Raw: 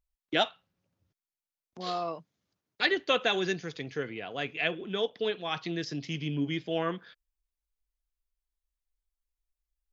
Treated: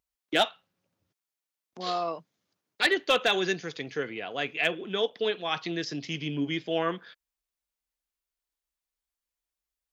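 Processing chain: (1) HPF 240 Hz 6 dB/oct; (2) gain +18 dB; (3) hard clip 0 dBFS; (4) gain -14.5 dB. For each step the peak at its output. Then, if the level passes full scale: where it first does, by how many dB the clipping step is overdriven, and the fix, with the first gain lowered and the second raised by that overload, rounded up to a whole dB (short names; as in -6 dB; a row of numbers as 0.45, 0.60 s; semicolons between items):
-11.5, +6.5, 0.0, -14.5 dBFS; step 2, 6.5 dB; step 2 +11 dB, step 4 -7.5 dB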